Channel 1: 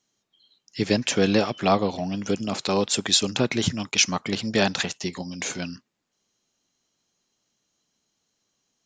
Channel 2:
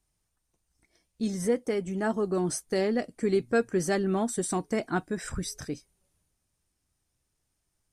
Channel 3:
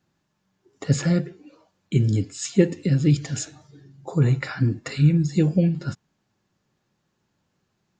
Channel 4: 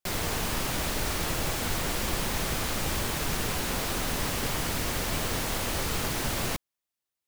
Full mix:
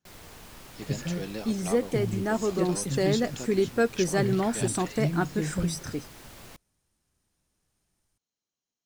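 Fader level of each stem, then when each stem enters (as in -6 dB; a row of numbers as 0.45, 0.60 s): -16.5, +1.0, -11.5, -17.5 dB; 0.00, 0.25, 0.00, 0.00 s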